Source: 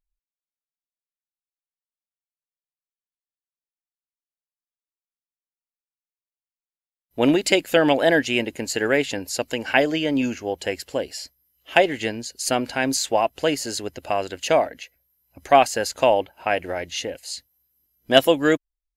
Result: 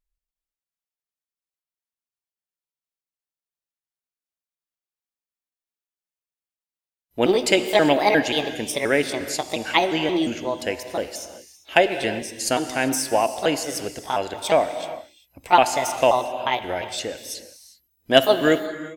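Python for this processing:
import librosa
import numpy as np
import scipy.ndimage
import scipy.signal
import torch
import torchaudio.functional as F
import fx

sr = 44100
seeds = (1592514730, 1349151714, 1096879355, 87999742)

y = fx.pitch_trill(x, sr, semitones=4.0, every_ms=177)
y = fx.rev_gated(y, sr, seeds[0], gate_ms=420, shape='flat', drr_db=9.5)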